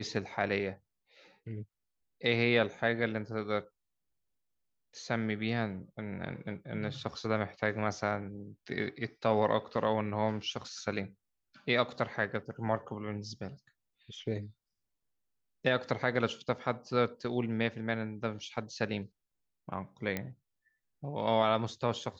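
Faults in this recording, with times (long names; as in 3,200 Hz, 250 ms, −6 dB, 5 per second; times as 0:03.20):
0:20.17: click −19 dBFS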